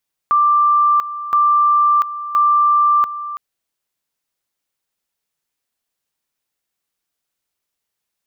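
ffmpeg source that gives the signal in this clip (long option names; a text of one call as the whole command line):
ffmpeg -f lavfi -i "aevalsrc='pow(10,(-10-13.5*gte(mod(t,1.02),0.69))/20)*sin(2*PI*1180*t)':duration=3.06:sample_rate=44100" out.wav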